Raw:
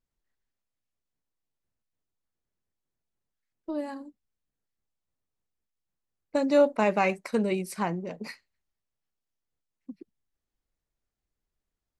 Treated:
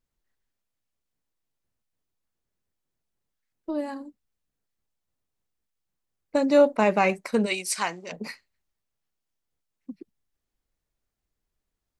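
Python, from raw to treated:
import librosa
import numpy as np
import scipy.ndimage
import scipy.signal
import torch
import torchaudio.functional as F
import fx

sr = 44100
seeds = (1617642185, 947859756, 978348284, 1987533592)

y = fx.weighting(x, sr, curve='ITU-R 468', at=(7.45, 8.11), fade=0.02)
y = y * librosa.db_to_amplitude(3.0)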